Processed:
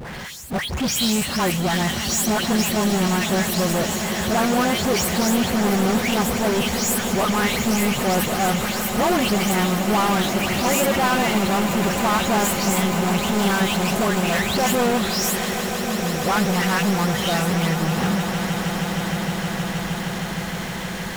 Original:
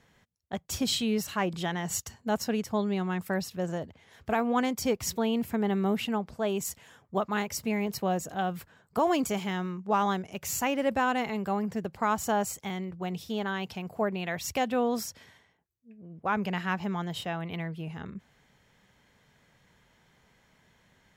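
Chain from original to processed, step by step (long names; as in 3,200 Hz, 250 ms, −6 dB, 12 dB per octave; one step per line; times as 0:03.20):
every frequency bin delayed by itself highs late, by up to 253 ms
power curve on the samples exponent 0.35
echo that builds up and dies away 156 ms, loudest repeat 8, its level −14 dB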